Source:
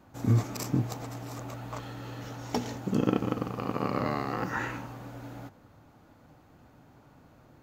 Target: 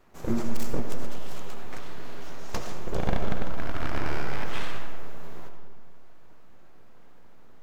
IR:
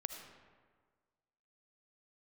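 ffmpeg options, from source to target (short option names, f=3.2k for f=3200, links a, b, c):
-filter_complex "[0:a]asettb=1/sr,asplit=3[a][b][c];[a]atrim=end=1.094[d];[b]atrim=start=1.09:end=1.53,asetpts=PTS-STARTPTS,afade=t=in:d=0.004:c=qsin,afade=t=out:st=0.436:d=0.004:c=qsin,equalizer=f=3.1k:t=o:w=0.32:g=12[e];[c]atrim=start=1.526[f];[d][e]acrossfade=d=0.004:c1=hsin:c2=qsin[g];[g][f]acrossfade=d=0.004:c1=qsin:c2=hsin,aeval=exprs='abs(val(0))':c=same[h];[1:a]atrim=start_sample=2205[i];[h][i]afir=irnorm=-1:irlink=0,volume=2dB"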